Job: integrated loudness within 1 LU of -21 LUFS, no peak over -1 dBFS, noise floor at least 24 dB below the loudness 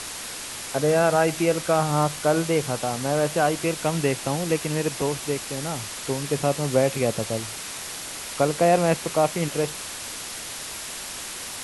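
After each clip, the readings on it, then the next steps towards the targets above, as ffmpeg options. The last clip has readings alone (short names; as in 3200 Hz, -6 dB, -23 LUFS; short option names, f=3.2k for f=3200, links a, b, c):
noise floor -35 dBFS; noise floor target -49 dBFS; loudness -24.5 LUFS; peak -7.0 dBFS; loudness target -21.0 LUFS
-> -af "afftdn=nr=14:nf=-35"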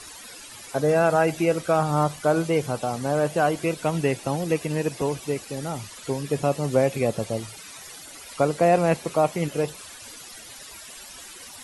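noise floor -43 dBFS; noise floor target -48 dBFS
-> -af "afftdn=nr=6:nf=-43"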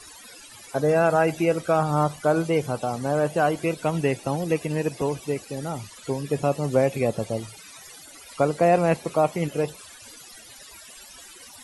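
noise floor -46 dBFS; noise floor target -49 dBFS
-> -af "afftdn=nr=6:nf=-46"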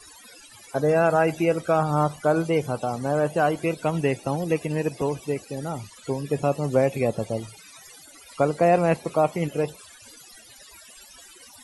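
noise floor -49 dBFS; loudness -24.5 LUFS; peak -7.0 dBFS; loudness target -21.0 LUFS
-> -af "volume=3.5dB"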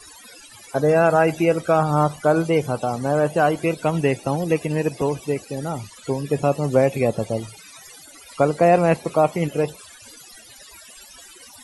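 loudness -21.0 LUFS; peak -3.5 dBFS; noise floor -45 dBFS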